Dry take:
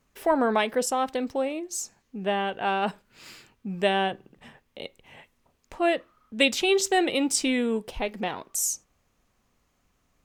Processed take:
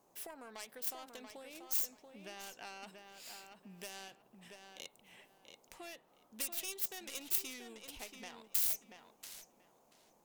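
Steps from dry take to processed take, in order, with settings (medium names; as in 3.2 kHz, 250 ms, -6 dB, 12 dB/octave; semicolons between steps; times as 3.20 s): tracing distortion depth 0.49 ms; compression 10:1, threshold -31 dBFS, peak gain reduction 15.5 dB; band noise 140–860 Hz -54 dBFS; pre-emphasis filter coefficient 0.9; on a send: filtered feedback delay 684 ms, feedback 21%, low-pass 3.9 kHz, level -6 dB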